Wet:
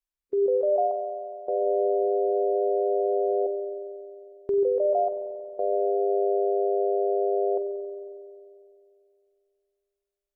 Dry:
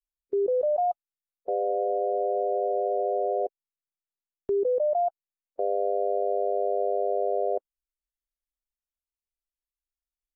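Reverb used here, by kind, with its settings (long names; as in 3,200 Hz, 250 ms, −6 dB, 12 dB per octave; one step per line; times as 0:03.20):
spring reverb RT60 2.5 s, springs 45 ms, chirp 30 ms, DRR 5.5 dB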